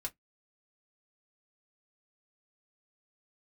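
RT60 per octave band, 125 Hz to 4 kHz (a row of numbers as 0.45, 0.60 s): 0.15, 0.15, 0.15, 0.10, 0.10, 0.10 s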